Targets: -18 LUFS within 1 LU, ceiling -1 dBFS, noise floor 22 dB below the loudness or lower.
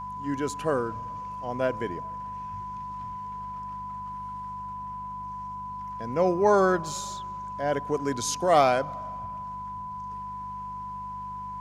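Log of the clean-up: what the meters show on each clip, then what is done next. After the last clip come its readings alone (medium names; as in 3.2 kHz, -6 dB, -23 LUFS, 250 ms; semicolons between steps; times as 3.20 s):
hum 50 Hz; highest harmonic 200 Hz; hum level -45 dBFS; steady tone 1 kHz; tone level -34 dBFS; loudness -29.5 LUFS; peak level -8.0 dBFS; loudness target -18.0 LUFS
-> de-hum 50 Hz, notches 4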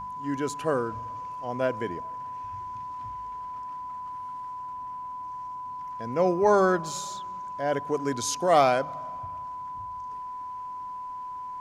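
hum not found; steady tone 1 kHz; tone level -34 dBFS
-> band-stop 1 kHz, Q 30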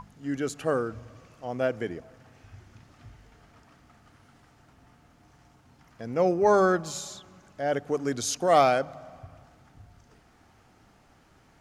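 steady tone not found; loudness -26.5 LUFS; peak level -8.0 dBFS; loudness target -18.0 LUFS
-> trim +8.5 dB; peak limiter -1 dBFS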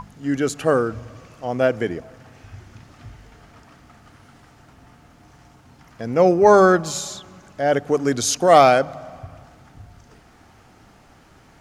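loudness -18.0 LUFS; peak level -1.0 dBFS; noise floor -51 dBFS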